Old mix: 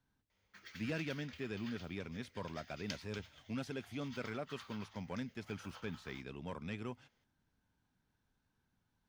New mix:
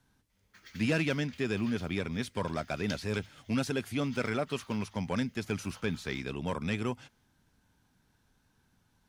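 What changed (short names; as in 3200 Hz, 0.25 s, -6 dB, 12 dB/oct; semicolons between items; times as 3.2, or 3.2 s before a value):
speech +10.5 dB; master: add bell 10000 Hz +7 dB 1.4 oct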